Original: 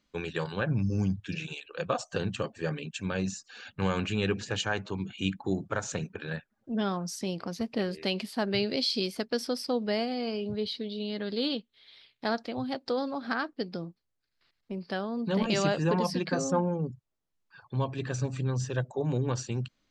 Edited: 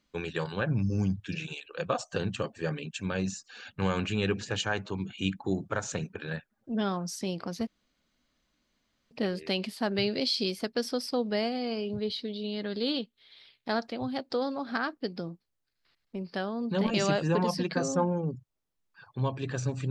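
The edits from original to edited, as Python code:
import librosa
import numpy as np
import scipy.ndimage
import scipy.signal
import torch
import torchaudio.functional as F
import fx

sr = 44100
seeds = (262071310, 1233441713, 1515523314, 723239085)

y = fx.edit(x, sr, fx.insert_room_tone(at_s=7.67, length_s=1.44), tone=tone)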